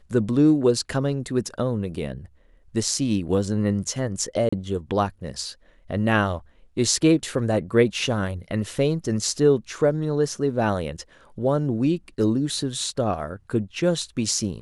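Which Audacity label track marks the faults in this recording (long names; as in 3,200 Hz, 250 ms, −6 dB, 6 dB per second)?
4.490000	4.530000	drop-out 35 ms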